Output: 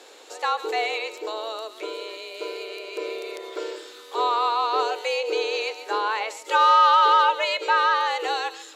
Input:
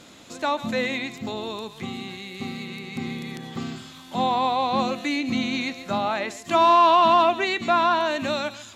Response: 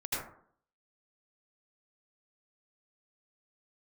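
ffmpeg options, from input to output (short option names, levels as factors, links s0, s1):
-af "afreqshift=220" -ar 44100 -c:a libmp3lame -b:a 224k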